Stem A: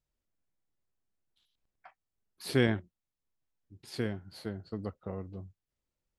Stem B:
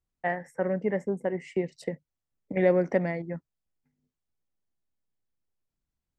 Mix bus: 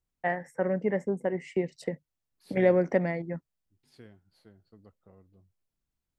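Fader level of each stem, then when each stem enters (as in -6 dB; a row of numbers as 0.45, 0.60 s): -18.0, 0.0 dB; 0.00, 0.00 s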